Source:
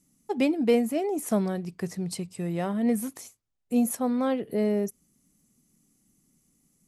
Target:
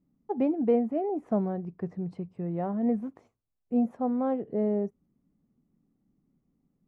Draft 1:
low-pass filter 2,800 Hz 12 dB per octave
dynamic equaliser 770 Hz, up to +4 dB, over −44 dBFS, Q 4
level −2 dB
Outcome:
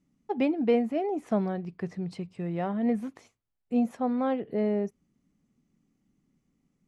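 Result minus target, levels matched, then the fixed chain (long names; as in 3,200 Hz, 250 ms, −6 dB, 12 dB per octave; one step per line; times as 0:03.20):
2,000 Hz band +10.5 dB
low-pass filter 1,000 Hz 12 dB per octave
dynamic equaliser 770 Hz, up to +4 dB, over −44 dBFS, Q 4
level −2 dB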